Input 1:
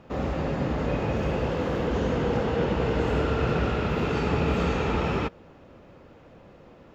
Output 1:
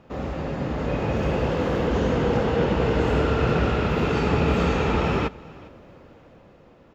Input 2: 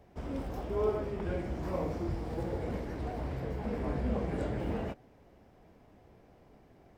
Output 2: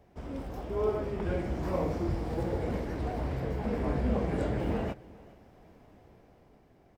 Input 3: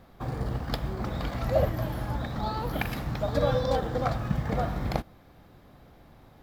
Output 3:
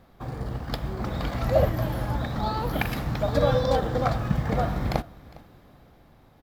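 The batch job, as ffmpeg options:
ffmpeg -i in.wav -af "dynaudnorm=framelen=110:gausssize=17:maxgain=5dB,aecho=1:1:407:0.0794,volume=-1.5dB" out.wav

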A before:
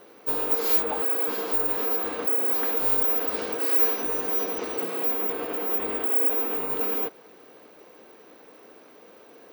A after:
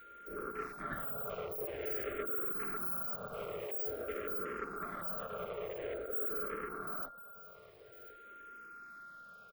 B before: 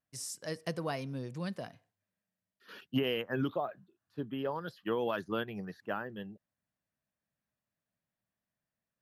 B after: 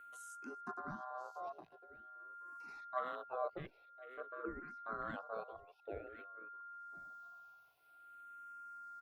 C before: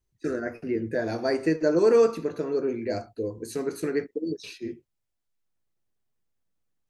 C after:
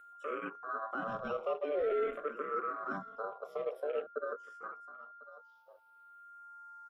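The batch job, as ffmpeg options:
ffmpeg -i in.wav -filter_complex "[0:a]aeval=exprs='val(0)*sin(2*PI*890*n/s)':channel_layout=same,acrossover=split=130[link_01][link_02];[link_01]acrusher=samples=33:mix=1:aa=0.000001[link_03];[link_03][link_02]amix=inputs=2:normalize=0,alimiter=limit=-21dB:level=0:latency=1:release=12,afwtdn=0.0178,acompressor=mode=upward:threshold=-39dB:ratio=2.5,asplit=2[link_04][link_05];[link_05]aecho=0:1:1050:0.168[link_06];[link_04][link_06]amix=inputs=2:normalize=0,adynamicequalizer=threshold=0.00562:dfrequency=480:dqfactor=0.86:tfrequency=480:tqfactor=0.86:attack=5:release=100:ratio=0.375:range=2.5:mode=boostabove:tftype=bell,aeval=exprs='val(0)+0.00631*sin(2*PI*1400*n/s)':channel_layout=same,asplit=2[link_07][link_08];[link_08]afreqshift=-0.49[link_09];[link_07][link_09]amix=inputs=2:normalize=1,volume=-5dB" out.wav

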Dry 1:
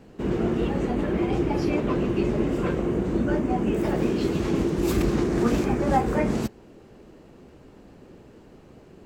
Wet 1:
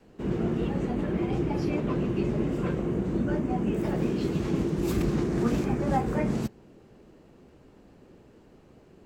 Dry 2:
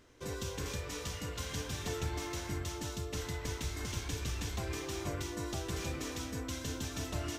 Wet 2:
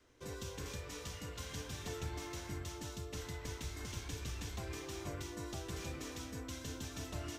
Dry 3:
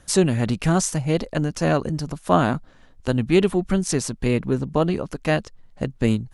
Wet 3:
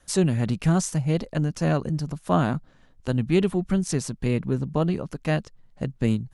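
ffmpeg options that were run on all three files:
ffmpeg -i in.wav -af "adynamicequalizer=threshold=0.0141:dfrequency=150:dqfactor=1.3:tfrequency=150:tqfactor=1.3:attack=5:release=100:ratio=0.375:range=3:mode=boostabove:tftype=bell,volume=-5.5dB" out.wav

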